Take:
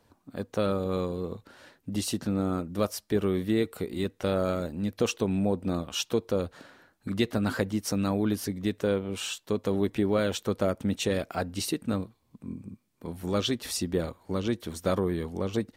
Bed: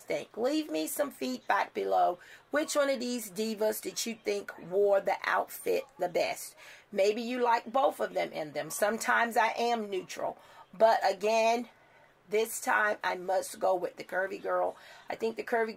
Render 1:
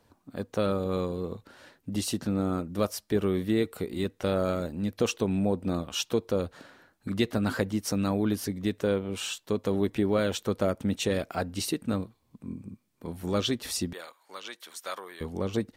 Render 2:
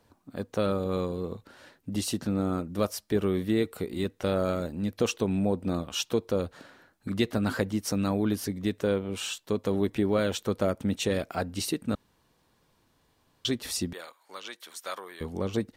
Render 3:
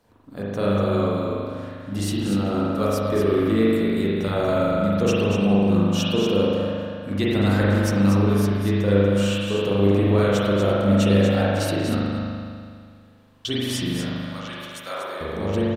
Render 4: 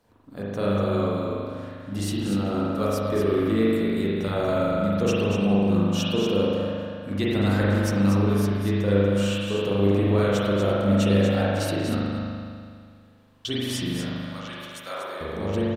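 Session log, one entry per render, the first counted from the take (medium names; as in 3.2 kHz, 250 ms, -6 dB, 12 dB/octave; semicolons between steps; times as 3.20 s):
13.93–15.21 s: high-pass 1.1 kHz
11.95–13.45 s: room tone
on a send: delay 239 ms -7 dB; on the sum: spring tank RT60 2.1 s, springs 40 ms, chirp 70 ms, DRR -7 dB
trim -2.5 dB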